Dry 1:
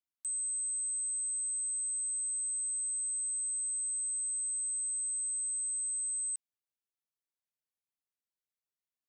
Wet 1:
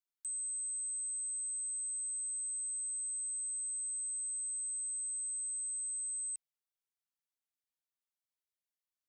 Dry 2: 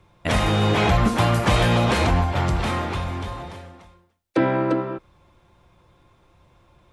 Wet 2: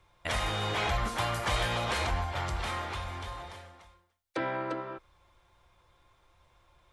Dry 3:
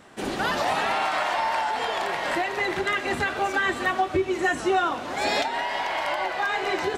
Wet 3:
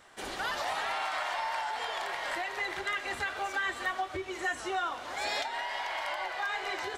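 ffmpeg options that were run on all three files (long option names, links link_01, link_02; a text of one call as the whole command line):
ffmpeg -i in.wav -filter_complex "[0:a]equalizer=frequency=200:width_type=o:width=2.4:gain=-14,asplit=2[link_01][link_02];[link_02]acompressor=threshold=-33dB:ratio=6,volume=-3dB[link_03];[link_01][link_03]amix=inputs=2:normalize=0,bandreject=frequency=2600:width=19,volume=-8dB" out.wav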